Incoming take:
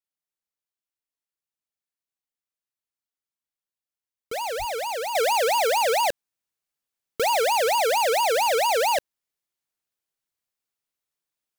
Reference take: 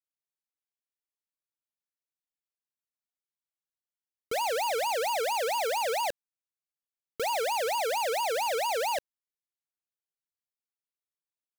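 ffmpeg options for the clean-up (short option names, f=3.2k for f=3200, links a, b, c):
-filter_complex "[0:a]asplit=3[a][b][c];[a]afade=t=out:st=4.58:d=0.02[d];[b]highpass=f=140:w=0.5412,highpass=f=140:w=1.3066,afade=t=in:st=4.58:d=0.02,afade=t=out:st=4.7:d=0.02[e];[c]afade=t=in:st=4.7:d=0.02[f];[d][e][f]amix=inputs=3:normalize=0,asetnsamples=n=441:p=0,asendcmd='5.15 volume volume -7.5dB',volume=0dB"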